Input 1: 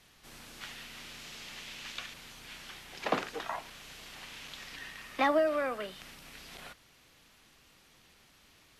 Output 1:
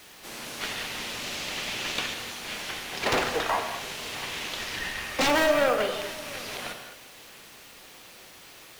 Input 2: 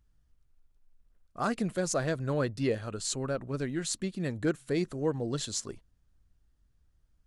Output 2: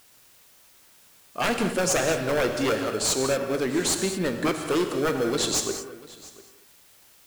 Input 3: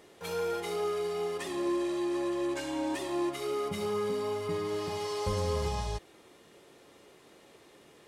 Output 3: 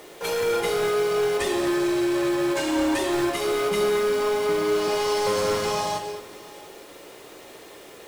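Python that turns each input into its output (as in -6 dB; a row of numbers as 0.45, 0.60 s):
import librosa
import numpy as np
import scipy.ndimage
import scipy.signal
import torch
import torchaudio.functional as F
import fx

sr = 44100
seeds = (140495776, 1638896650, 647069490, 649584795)

p1 = scipy.signal.sosfilt(scipy.signal.butter(2, 340.0, 'highpass', fs=sr, output='sos'), x)
p2 = fx.sample_hold(p1, sr, seeds[0], rate_hz=1900.0, jitter_pct=0)
p3 = p1 + (p2 * 10.0 ** (-9.0 / 20.0))
p4 = fx.fold_sine(p3, sr, drive_db=16, ceiling_db=-11.0)
p5 = fx.quant_dither(p4, sr, seeds[1], bits=8, dither='triangular')
p6 = p5 + fx.echo_single(p5, sr, ms=693, db=-20.5, dry=0)
p7 = fx.rev_gated(p6, sr, seeds[2], gate_ms=250, shape='flat', drr_db=5.5)
y = p7 * 10.0 ** (-8.5 / 20.0)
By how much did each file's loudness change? +8.0, +7.5, +9.5 LU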